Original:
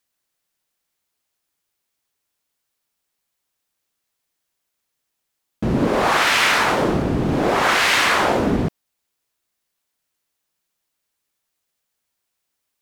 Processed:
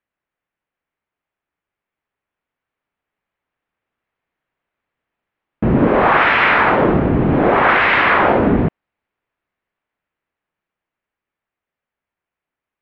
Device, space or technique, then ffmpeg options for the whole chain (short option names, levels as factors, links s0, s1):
action camera in a waterproof case: -af "lowpass=f=2400:w=0.5412,lowpass=f=2400:w=1.3066,dynaudnorm=f=300:g=21:m=3.76" -ar 32000 -c:a aac -b:a 48k